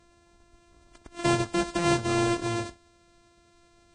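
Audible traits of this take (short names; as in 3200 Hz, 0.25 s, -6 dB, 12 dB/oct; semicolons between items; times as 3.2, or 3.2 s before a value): a buzz of ramps at a fixed pitch in blocks of 128 samples; Vorbis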